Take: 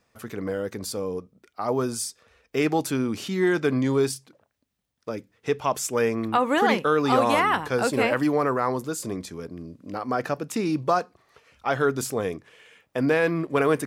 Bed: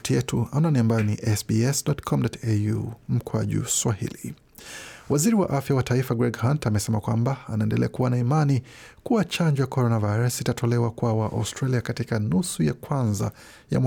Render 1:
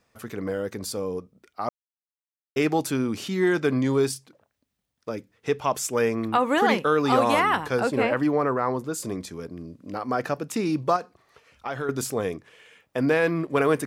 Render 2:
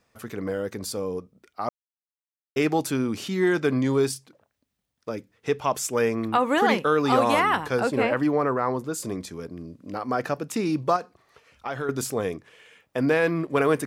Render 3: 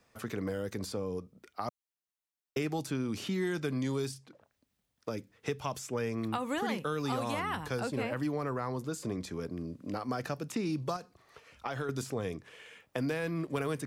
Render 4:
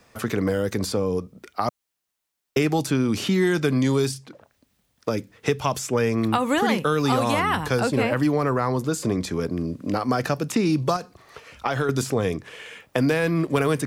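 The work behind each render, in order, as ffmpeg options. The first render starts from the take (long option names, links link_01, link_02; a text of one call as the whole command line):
ffmpeg -i in.wav -filter_complex "[0:a]asettb=1/sr,asplit=3[link_01][link_02][link_03];[link_01]atrim=end=7.804[link_04];[link_02]atrim=start=7.8:end=8.94,asetpts=PTS-STARTPTS,afade=type=in:duration=0.004:curve=qsin,afade=type=out:start_time=1.136:duration=0.004:curve=qsin,highshelf=frequency=4000:gain=-11[link_05];[link_03]atrim=start=8.936[link_06];[link_04][link_05]acrossfade=duration=0.004:curve1=hsin:curve2=qsin[link_07];[link_07][link_06]acrossfade=duration=0.004:curve1=qsin:curve2=hsin,asettb=1/sr,asplit=3[link_08][link_09][link_10];[link_08]atrim=end=10.964[link_11];[link_09]atrim=start=10.96:end=11.89,asetpts=PTS-STARTPTS,afade=type=in:duration=0.004:curve=qsin,afade=type=out:start_time=0.926:duration=0.004:curve=qsin,acompressor=threshold=-28dB:ratio=3:attack=3.2:release=140:knee=1:detection=peak[link_12];[link_10]atrim=start=11.886[link_13];[link_11][link_12]acrossfade=duration=0.004:curve1=hsin:curve2=qsin[link_14];[link_14][link_13]acrossfade=duration=0.004:curve1=qsin:curve2=hsin,asplit=3[link_15][link_16][link_17];[link_15]atrim=end=1.69,asetpts=PTS-STARTPTS,afade=type=out:start_time=1.686:duration=0.004:curve=hsin[link_18];[link_16]atrim=start=1.69:end=2.56,asetpts=PTS-STARTPTS,volume=0[link_19];[link_17]atrim=start=2.56,asetpts=PTS-STARTPTS,afade=type=in:duration=0.004:curve=hsin[link_20];[link_18][link_19][link_20]concat=n=3:v=0:a=1" out.wav
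ffmpeg -i in.wav -af anull out.wav
ffmpeg -i in.wav -filter_complex "[0:a]acrossover=split=170|3100|7800[link_01][link_02][link_03][link_04];[link_01]acompressor=threshold=-38dB:ratio=4[link_05];[link_02]acompressor=threshold=-35dB:ratio=4[link_06];[link_03]acompressor=threshold=-48dB:ratio=4[link_07];[link_04]acompressor=threshold=-56dB:ratio=4[link_08];[link_05][link_06][link_07][link_08]amix=inputs=4:normalize=0" out.wav
ffmpeg -i in.wav -af "volume=12dB" out.wav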